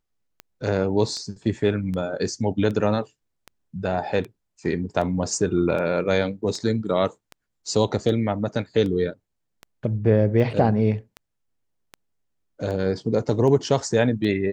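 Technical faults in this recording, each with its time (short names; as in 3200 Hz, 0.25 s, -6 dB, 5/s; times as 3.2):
tick 78 rpm -21 dBFS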